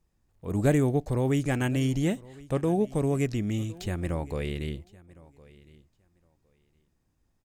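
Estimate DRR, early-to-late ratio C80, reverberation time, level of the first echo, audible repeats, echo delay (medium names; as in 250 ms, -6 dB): no reverb, no reverb, no reverb, -22.0 dB, 1, 1061 ms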